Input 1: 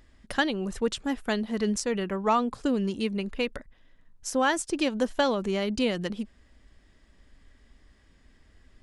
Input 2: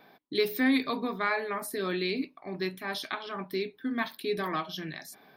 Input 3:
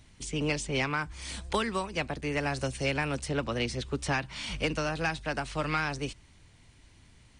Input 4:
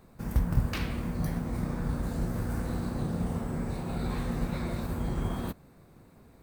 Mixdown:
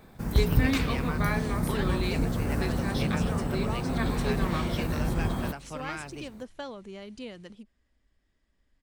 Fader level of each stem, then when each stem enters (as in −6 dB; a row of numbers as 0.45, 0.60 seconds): −14.5, −3.0, −8.0, +3.0 decibels; 1.40, 0.00, 0.15, 0.00 seconds